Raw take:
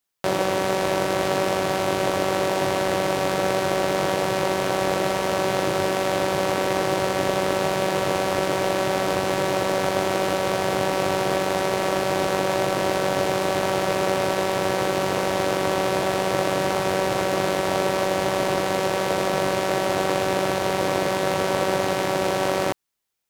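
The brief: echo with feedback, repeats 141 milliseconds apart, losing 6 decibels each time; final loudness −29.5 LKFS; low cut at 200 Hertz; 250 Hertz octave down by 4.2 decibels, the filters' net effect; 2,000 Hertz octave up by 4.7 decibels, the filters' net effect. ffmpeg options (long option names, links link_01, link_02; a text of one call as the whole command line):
ffmpeg -i in.wav -af "highpass=200,equalizer=frequency=250:width_type=o:gain=-5,equalizer=frequency=2000:width_type=o:gain=6,aecho=1:1:141|282|423|564|705|846:0.501|0.251|0.125|0.0626|0.0313|0.0157,volume=-8dB" out.wav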